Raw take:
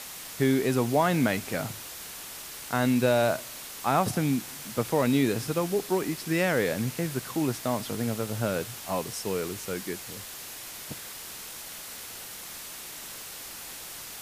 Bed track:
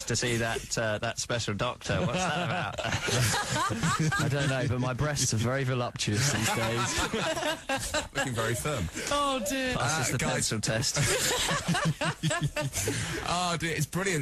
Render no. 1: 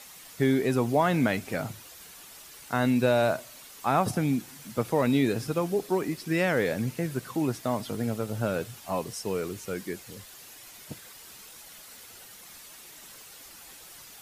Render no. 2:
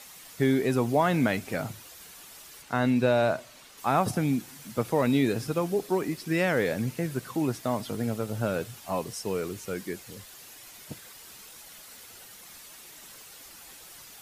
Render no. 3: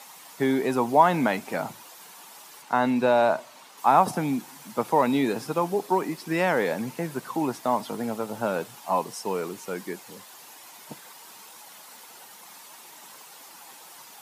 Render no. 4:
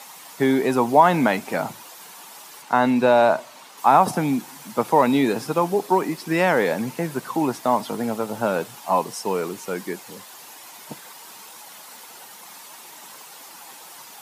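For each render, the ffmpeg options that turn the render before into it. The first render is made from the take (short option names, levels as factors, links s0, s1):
-af "afftdn=nr=9:nf=-41"
-filter_complex "[0:a]asettb=1/sr,asplit=3[s0][s1][s2];[s0]atrim=end=2.624[s3];[s1]atrim=start=2.62:end=3.78,asetpts=PTS-STARTPTS,afade=t=in:d=0.004:c=qsin,afade=t=out:st=1.156:d=0.004:c=qsin,highshelf=f=8500:g=-11.5[s4];[s2]atrim=start=3.776[s5];[s3][s4]acrossfade=d=0.004:c1=hsin:c2=qsin[s6];[s6][s5]acrossfade=d=0.004:c1=qsin:c2=hsin"
-af "highpass=f=160:w=0.5412,highpass=f=160:w=1.3066,equalizer=f=910:w=2.1:g=11.5"
-af "volume=1.68,alimiter=limit=0.708:level=0:latency=1"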